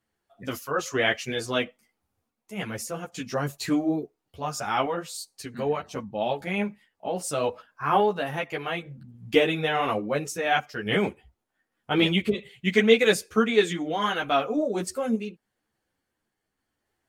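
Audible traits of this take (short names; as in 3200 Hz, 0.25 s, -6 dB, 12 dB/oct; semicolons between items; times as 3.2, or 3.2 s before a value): random-step tremolo; a shimmering, thickened sound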